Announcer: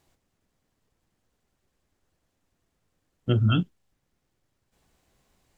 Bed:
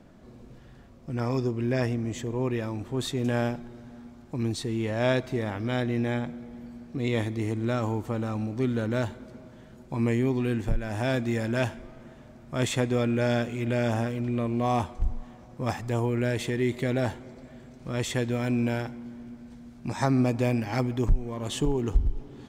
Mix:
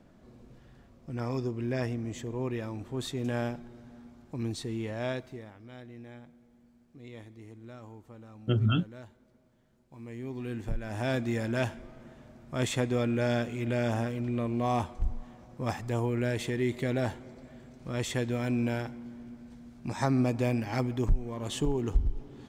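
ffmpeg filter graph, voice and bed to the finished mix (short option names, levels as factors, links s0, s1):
-filter_complex "[0:a]adelay=5200,volume=0.631[s0];[1:a]volume=3.76,afade=t=out:st=4.73:d=0.8:silence=0.188365,afade=t=in:st=10.06:d=1.07:silence=0.149624[s1];[s0][s1]amix=inputs=2:normalize=0"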